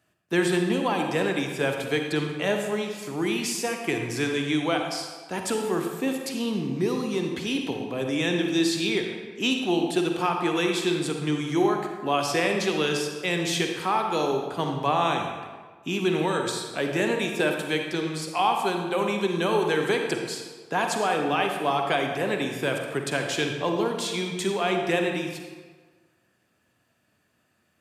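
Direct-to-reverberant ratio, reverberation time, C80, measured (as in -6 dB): 3.0 dB, 1.5 s, 5.5 dB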